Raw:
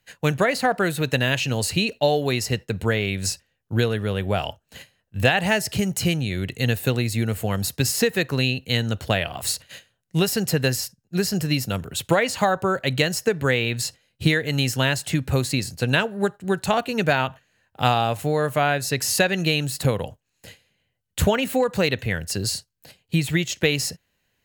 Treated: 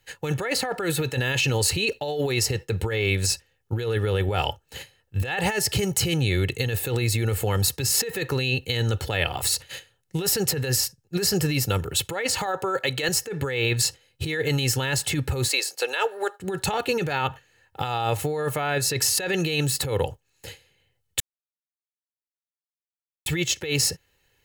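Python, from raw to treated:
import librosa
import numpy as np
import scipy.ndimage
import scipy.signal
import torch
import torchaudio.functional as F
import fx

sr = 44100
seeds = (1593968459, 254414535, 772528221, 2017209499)

y = fx.highpass(x, sr, hz=330.0, slope=6, at=(12.46, 13.09))
y = fx.highpass(y, sr, hz=470.0, slope=24, at=(15.48, 16.4))
y = fx.edit(y, sr, fx.silence(start_s=21.2, length_s=2.06), tone=tone)
y = y + 0.61 * np.pad(y, (int(2.3 * sr / 1000.0), 0))[:len(y)]
y = fx.over_compress(y, sr, threshold_db=-24.0, ratio=-1.0)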